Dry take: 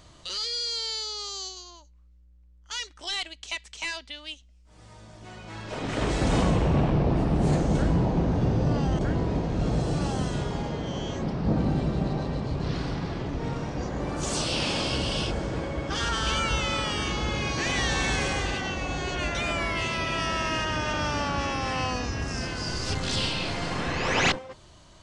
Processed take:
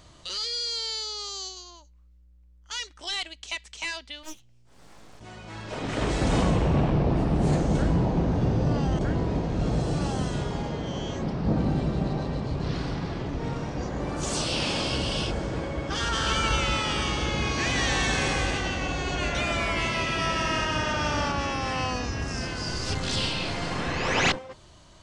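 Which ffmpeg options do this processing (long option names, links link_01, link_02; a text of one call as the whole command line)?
ffmpeg -i in.wav -filter_complex "[0:a]asplit=3[link_01][link_02][link_03];[link_01]afade=type=out:start_time=4.22:duration=0.02[link_04];[link_02]aeval=exprs='abs(val(0))':channel_layout=same,afade=type=in:start_time=4.22:duration=0.02,afade=type=out:start_time=5.19:duration=0.02[link_05];[link_03]afade=type=in:start_time=5.19:duration=0.02[link_06];[link_04][link_05][link_06]amix=inputs=3:normalize=0,asettb=1/sr,asplit=3[link_07][link_08][link_09];[link_07]atrim=end=15.954[link_10];[link_08]atrim=start=15.95:end=21.32,asetpts=PTS-STARTPTS,afade=type=in:duration=0.004:curve=qsin,afade=type=out:start_time=5.366:duration=0.004:curve=qsin,aecho=1:1:176:0.596,atrim=end_sample=236817[link_11];[link_09]atrim=start=21.316[link_12];[link_10][link_11]acrossfade=duration=0.004:curve1=hsin:curve2=qsin[link_13];[link_13][link_12]acrossfade=duration=0.004:curve1=qsin:curve2=hsin" out.wav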